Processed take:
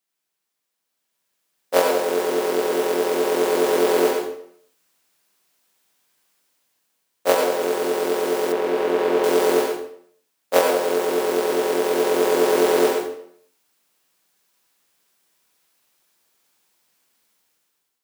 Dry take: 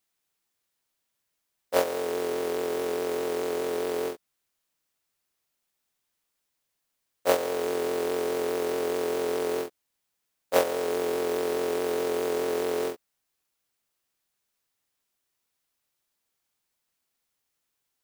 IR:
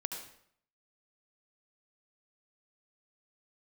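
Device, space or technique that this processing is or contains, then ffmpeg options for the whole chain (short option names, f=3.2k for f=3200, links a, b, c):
far laptop microphone: -filter_complex "[1:a]atrim=start_sample=2205[a];[0:a][a]afir=irnorm=-1:irlink=0,highpass=150,dynaudnorm=f=790:g=3:m=14dB,asettb=1/sr,asplit=3[b][c][d];[b]atrim=end=8.524[e];[c]atrim=start=8.52:end=9.24,asetpts=PTS-STARTPTS,afade=t=in:d=0.004:c=qsin,afade=t=out:st=0.716:d=0.004:c=qsin,acrossover=split=3600[f][g];[g]acompressor=threshold=-44dB:ratio=4:attack=1:release=60[h];[f][h]amix=inputs=2:normalize=0[i];[d]atrim=start=9.236[j];[e][i]acrossfade=d=0.004:c1=hsin:c2=qsin[k];[k][j]acrossfade=d=0.004:c1=qsin:c2=hsin,volume=-1dB"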